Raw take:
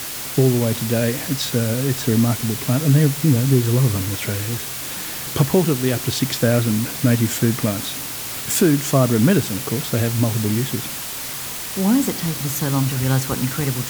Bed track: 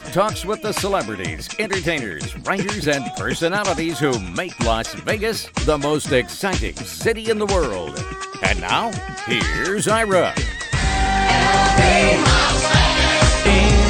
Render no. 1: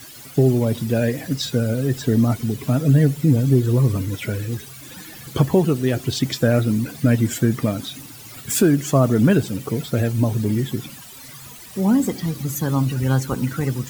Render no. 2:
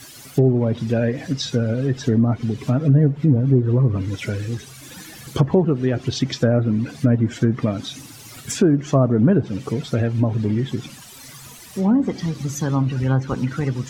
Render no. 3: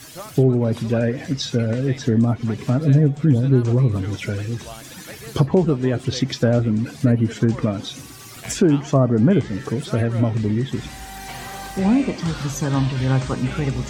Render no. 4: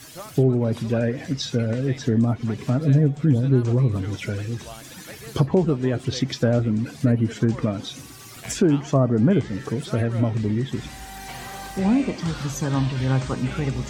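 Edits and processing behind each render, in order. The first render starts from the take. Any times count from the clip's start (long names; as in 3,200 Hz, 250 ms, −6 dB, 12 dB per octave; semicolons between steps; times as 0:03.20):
broadband denoise 15 dB, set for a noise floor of −29 dBFS
dynamic equaliser 5,900 Hz, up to +7 dB, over −49 dBFS, Q 3.3; treble cut that deepens with the level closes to 1,100 Hz, closed at −12 dBFS
mix in bed track −19 dB
level −2.5 dB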